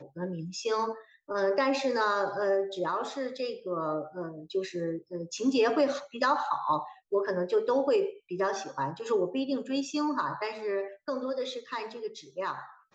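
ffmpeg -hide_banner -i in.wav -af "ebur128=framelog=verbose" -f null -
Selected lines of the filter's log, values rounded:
Integrated loudness:
  I:         -30.7 LUFS
  Threshold: -40.8 LUFS
Loudness range:
  LRA:         4.5 LU
  Threshold: -50.4 LUFS
  LRA low:   -32.9 LUFS
  LRA high:  -28.4 LUFS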